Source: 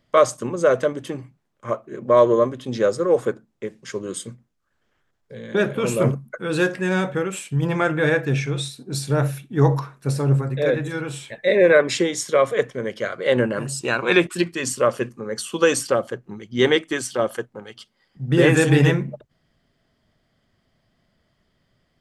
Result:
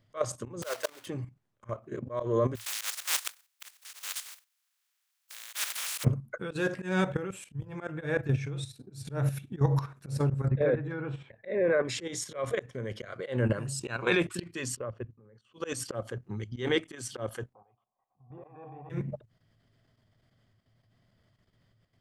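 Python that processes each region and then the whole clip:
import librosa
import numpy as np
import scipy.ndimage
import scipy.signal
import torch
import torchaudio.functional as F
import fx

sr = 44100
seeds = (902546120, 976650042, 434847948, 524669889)

y = fx.chain(x, sr, fx.block_float(bits=3),
    fx.highpass(hz=670.0, slope=12), at=(0.62, 1.07))
y = fx.spec_flatten(y, sr, power=0.14, at=(2.55, 6.03), fade=0.02)
y = fx.highpass(y, sr, hz=1300.0, slope=12, at=(2.55, 6.03), fade=0.02)
y = fx.chain(y, sr, fx.peak_eq(hz=4500.0, db=-3.0, octaves=2.6),
    fx.level_steps(step_db=10), at=(7.17, 9.05))
y = fx.chain(y, sr, fx.lowpass(hz=1700.0, slope=12),
    fx.low_shelf(hz=81.0, db=-5.0), at=(10.48, 11.85))
y = fx.chain(y, sr, fx.level_steps(step_db=22),
    fx.spacing_loss(db_at_10k=32),
    fx.upward_expand(threshold_db=-35.0, expansion=1.5), at=(14.76, 15.54))
y = fx.chain(y, sr, fx.law_mismatch(coded='mu'),
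    fx.formant_cascade(vowel='a'), at=(17.53, 18.9))
y = fx.peak_eq(y, sr, hz=110.0, db=14.5, octaves=0.37)
y = fx.level_steps(y, sr, step_db=11)
y = fx.auto_swell(y, sr, attack_ms=180.0)
y = y * 10.0 ** (-2.0 / 20.0)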